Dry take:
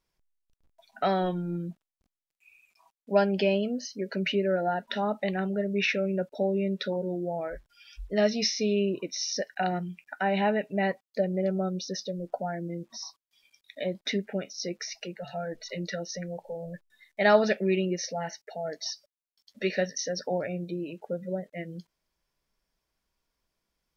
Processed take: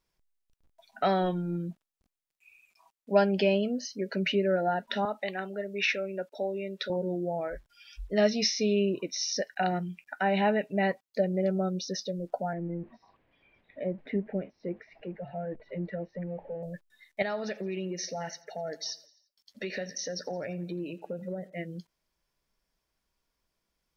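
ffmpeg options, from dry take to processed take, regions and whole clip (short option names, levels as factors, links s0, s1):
-filter_complex "[0:a]asettb=1/sr,asplit=3[s0][s1][s2];[s0]atrim=end=5.054[s3];[s1]atrim=start=5.05:end=6.9,asetpts=PTS-STARTPTS,afade=t=in:d=0.004:c=qsin,afade=t=out:st=1.846:d=0.004:c=qsin,highpass=350,equalizer=f=460:t=o:w=1.8:g=-3.5[s4];[s2]atrim=start=6.896[s5];[s3][s4]acrossfade=d=0.004:c1=hsin:c2=qsin[s6];[s6][s5]acrossfade=d=0.004:c1=qsin:c2=hsin,asettb=1/sr,asplit=3[s7][s8][s9];[s7]atrim=end=12.534[s10];[s8]atrim=start=12.53:end=16.63,asetpts=PTS-STARTPTS,afade=t=in:d=0.004:c=qsin,afade=t=out:st=4.096:d=0.004:c=qsin,aeval=exprs='val(0)+0.5*0.00531*sgn(val(0))':c=same,lowpass=f=1900:w=0.5412,lowpass=f=1900:w=1.3066,equalizer=f=1300:t=o:w=1.1:g=-13[s11];[s9]atrim=start=16.626[s12];[s10][s11]acrossfade=d=0.004:c1=hsin:c2=qsin[s13];[s13][s12]acrossfade=d=0.004:c1=qsin:c2=hsin,asettb=1/sr,asplit=3[s14][s15][s16];[s14]atrim=end=17.224[s17];[s15]atrim=start=17.22:end=21.58,asetpts=PTS-STARTPTS,afade=t=in:d=0.004:c=qsin,afade=t=out:st=4.356:d=0.004:c=qsin,acompressor=threshold=0.0282:ratio=5:attack=3.2:release=140:knee=1:detection=peak,aecho=1:1:85|170|255|340:0.0891|0.0499|0.0279|0.0157,atrim=end_sample=192276[s18];[s16]atrim=start=21.576[s19];[s17][s18]acrossfade=d=0.004:c1=hsin:c2=qsin[s20];[s20][s19]acrossfade=d=0.004:c1=qsin:c2=hsin"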